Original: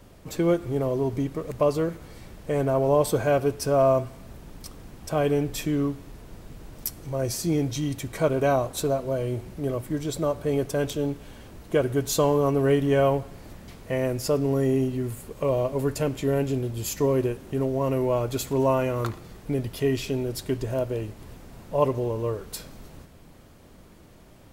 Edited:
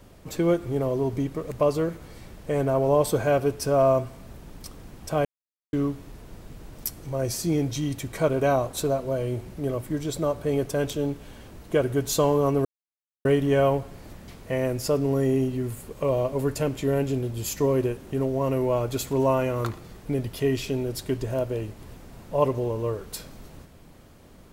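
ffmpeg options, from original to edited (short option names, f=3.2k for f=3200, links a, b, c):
-filter_complex "[0:a]asplit=4[a][b][c][d];[a]atrim=end=5.25,asetpts=PTS-STARTPTS,afade=t=out:st=5.246:d=0.004:c=hsin[e];[b]atrim=start=5.25:end=5.73,asetpts=PTS-STARTPTS,volume=0[f];[c]atrim=start=5.73:end=12.65,asetpts=PTS-STARTPTS,afade=t=in:d=0.004:c=hsin,afade=t=out:st=6.916:d=0.004:c=hsin,apad=pad_dur=0.6[g];[d]atrim=start=12.65,asetpts=PTS-STARTPTS,afade=t=in:d=0.004:c=hsin[h];[e][f][g][h]concat=n=4:v=0:a=1"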